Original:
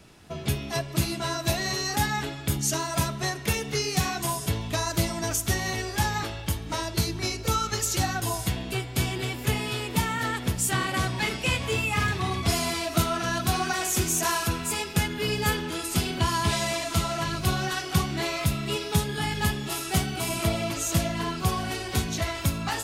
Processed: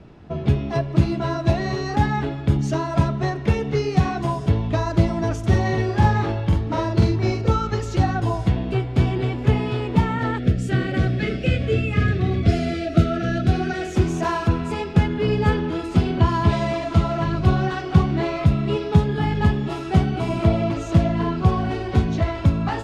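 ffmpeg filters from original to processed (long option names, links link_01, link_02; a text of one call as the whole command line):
ffmpeg -i in.wav -filter_complex "[0:a]asettb=1/sr,asplit=3[link_01][link_02][link_03];[link_01]atrim=end=5.394[link_04];[link_02]atrim=start=5.39:end=7.51,asetpts=PTS-STARTPTS,afade=type=in:duration=0.004:curve=qsin,afade=type=out:start_time=2.116:duration=0.004:curve=qsin,asplit=2[link_05][link_06];[link_06]adelay=45,volume=-2.5dB[link_07];[link_05][link_07]amix=inputs=2:normalize=0,atrim=end_sample=93492[link_08];[link_03]atrim=start=7.506[link_09];[link_04][link_08]acrossfade=duration=0.004:curve1=hsin:curve2=qsin[link_10];[link_10][link_09]acrossfade=duration=0.004:curve1=qsin:curve2=hsin,asettb=1/sr,asplit=3[link_11][link_12][link_13];[link_11]atrim=end=10.384[link_14];[link_12]atrim=start=10.38:end=13.96,asetpts=PTS-STARTPTS,afade=type=in:duration=0.004:curve=qsin,afade=type=out:start_time=3.576:duration=0.004:curve=qsin,asuperstop=centerf=960:order=4:qfactor=1.5[link_15];[link_13]atrim=start=13.956[link_16];[link_14][link_15]acrossfade=duration=0.004:curve1=hsin:curve2=qsin[link_17];[link_17][link_16]acrossfade=duration=0.004:curve1=qsin:curve2=hsin,lowpass=4100,tiltshelf=frequency=1300:gain=7.5,volume=2dB" out.wav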